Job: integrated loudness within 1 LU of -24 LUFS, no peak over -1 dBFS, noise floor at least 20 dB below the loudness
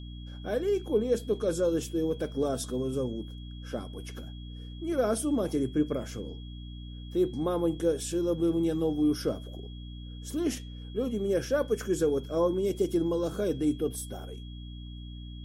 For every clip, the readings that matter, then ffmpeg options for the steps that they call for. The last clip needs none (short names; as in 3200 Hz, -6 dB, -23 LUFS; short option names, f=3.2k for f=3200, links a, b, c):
hum 60 Hz; harmonics up to 300 Hz; hum level -39 dBFS; steady tone 3300 Hz; tone level -52 dBFS; loudness -30.0 LUFS; peak -15.5 dBFS; loudness target -24.0 LUFS
-> -af "bandreject=f=60:t=h:w=4,bandreject=f=120:t=h:w=4,bandreject=f=180:t=h:w=4,bandreject=f=240:t=h:w=4,bandreject=f=300:t=h:w=4"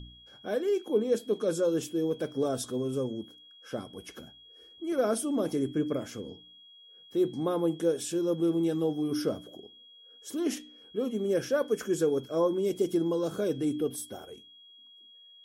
hum none; steady tone 3300 Hz; tone level -52 dBFS
-> -af "bandreject=f=3.3k:w=30"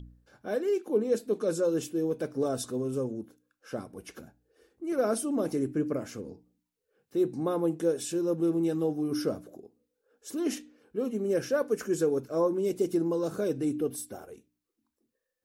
steady tone none; loudness -30.0 LUFS; peak -15.5 dBFS; loudness target -24.0 LUFS
-> -af "volume=6dB"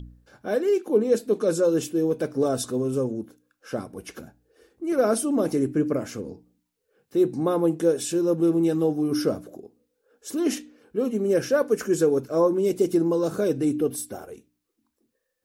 loudness -24.0 LUFS; peak -9.5 dBFS; noise floor -78 dBFS